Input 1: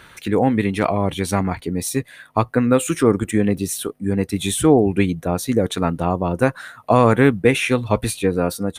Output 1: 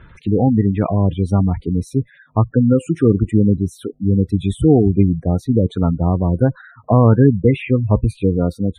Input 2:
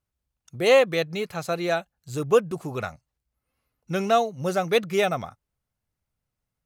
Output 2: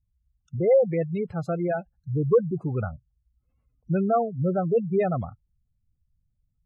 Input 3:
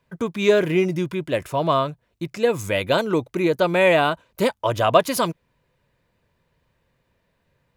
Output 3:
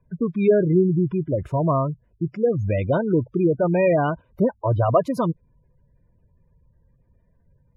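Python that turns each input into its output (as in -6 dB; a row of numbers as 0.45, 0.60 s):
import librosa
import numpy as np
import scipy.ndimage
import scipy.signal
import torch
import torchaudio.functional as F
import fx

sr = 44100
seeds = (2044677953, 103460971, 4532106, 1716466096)

y = fx.spec_gate(x, sr, threshold_db=-15, keep='strong')
y = fx.riaa(y, sr, side='playback')
y = y * librosa.db_to_amplitude(-3.5)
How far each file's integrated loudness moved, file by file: +2.5, -1.0, -0.5 LU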